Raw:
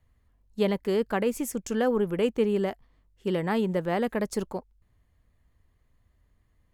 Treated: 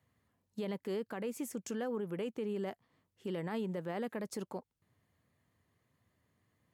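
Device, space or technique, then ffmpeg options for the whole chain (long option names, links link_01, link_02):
podcast mastering chain: -af "highpass=frequency=110:width=0.5412,highpass=frequency=110:width=1.3066,deesser=0.6,acompressor=threshold=-38dB:ratio=2,alimiter=level_in=4.5dB:limit=-24dB:level=0:latency=1:release=28,volume=-4.5dB,volume=-1dB" -ar 44100 -c:a libmp3lame -b:a 96k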